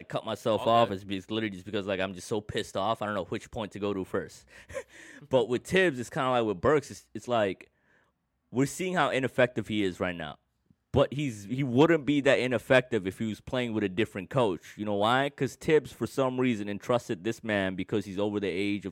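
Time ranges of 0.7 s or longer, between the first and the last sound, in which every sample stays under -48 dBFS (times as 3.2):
7.67–8.52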